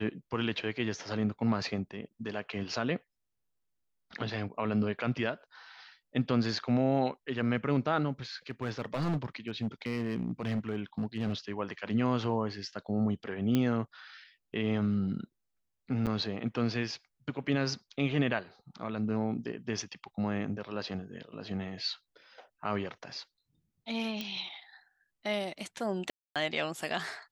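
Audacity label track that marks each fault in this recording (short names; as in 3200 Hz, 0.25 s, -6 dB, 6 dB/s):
8.500000	11.330000	clipped -27 dBFS
13.550000	13.550000	pop -15 dBFS
16.060000	16.070000	gap 7.8 ms
24.210000	24.210000	pop -21 dBFS
26.100000	26.360000	gap 0.257 s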